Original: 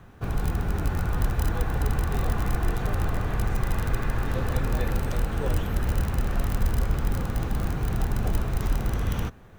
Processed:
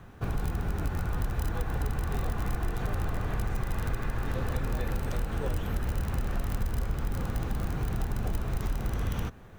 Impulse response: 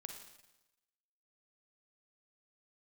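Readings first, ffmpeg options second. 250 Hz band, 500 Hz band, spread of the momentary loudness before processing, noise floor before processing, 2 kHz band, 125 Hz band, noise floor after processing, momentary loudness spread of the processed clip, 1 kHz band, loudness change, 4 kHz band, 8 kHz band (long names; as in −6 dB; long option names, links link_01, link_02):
−4.5 dB, −4.5 dB, 2 LU, −46 dBFS, −4.5 dB, −4.5 dB, −47 dBFS, 1 LU, −4.5 dB, −5.0 dB, −5.0 dB, −5.0 dB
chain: -af "acompressor=threshold=-27dB:ratio=3"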